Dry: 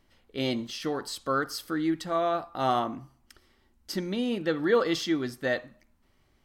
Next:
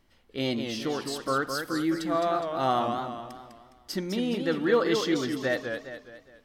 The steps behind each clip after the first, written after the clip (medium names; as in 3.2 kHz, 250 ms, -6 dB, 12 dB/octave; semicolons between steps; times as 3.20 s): modulated delay 207 ms, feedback 44%, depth 151 cents, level -6 dB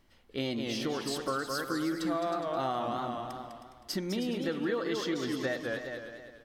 compression, threshold -29 dBFS, peak gain reduction 11 dB; on a send: delay 315 ms -10.5 dB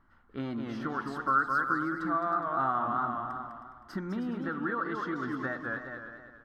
FFT filter 270 Hz 0 dB, 510 Hz -9 dB, 1.4 kHz +12 dB, 2.4 kHz -13 dB, 7.7 kHz -20 dB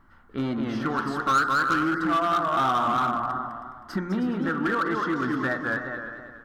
de-hum 58.69 Hz, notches 36; in parallel at -4.5 dB: wavefolder -29 dBFS; on the sum: trim +4.5 dB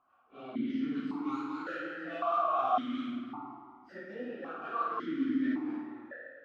phase randomisation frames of 100 ms; on a send: flutter echo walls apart 9.1 m, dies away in 0.79 s; on the sum: stepped vowel filter 1.8 Hz